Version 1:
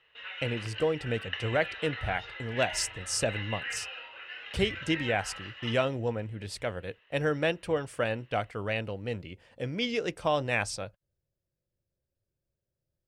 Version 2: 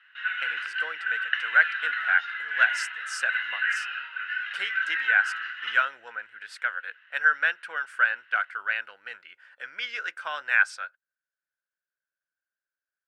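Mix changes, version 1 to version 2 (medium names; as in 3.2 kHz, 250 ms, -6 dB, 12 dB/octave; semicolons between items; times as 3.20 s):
speech: add treble shelf 3.9 kHz -9 dB; master: add resonant high-pass 1.5 kHz, resonance Q 11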